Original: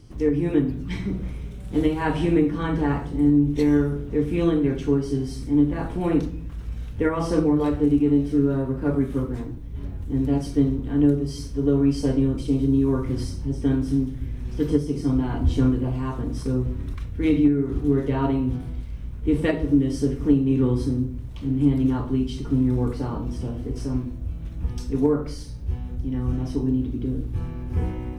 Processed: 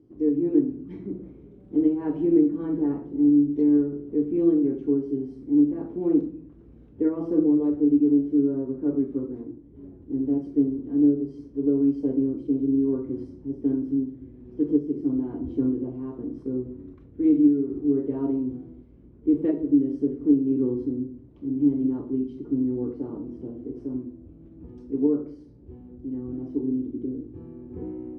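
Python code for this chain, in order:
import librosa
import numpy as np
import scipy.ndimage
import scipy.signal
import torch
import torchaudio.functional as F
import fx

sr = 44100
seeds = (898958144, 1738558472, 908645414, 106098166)

y = fx.bandpass_q(x, sr, hz=330.0, q=3.2)
y = y * 10.0 ** (2.5 / 20.0)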